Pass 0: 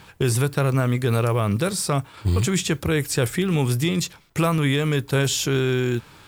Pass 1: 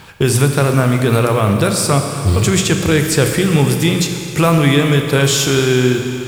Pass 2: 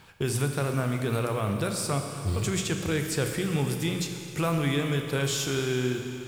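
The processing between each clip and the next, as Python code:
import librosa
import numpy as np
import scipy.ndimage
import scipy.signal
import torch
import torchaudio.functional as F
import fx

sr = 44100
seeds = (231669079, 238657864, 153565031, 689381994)

y1 = fx.hum_notches(x, sr, base_hz=60, count=3)
y1 = fx.rev_schroeder(y1, sr, rt60_s=2.7, comb_ms=28, drr_db=4.5)
y1 = y1 * 10.0 ** (7.5 / 20.0)
y2 = fx.comb_fb(y1, sr, f0_hz=740.0, decay_s=0.36, harmonics='all', damping=0.0, mix_pct=60)
y2 = y2 * 10.0 ** (-6.5 / 20.0)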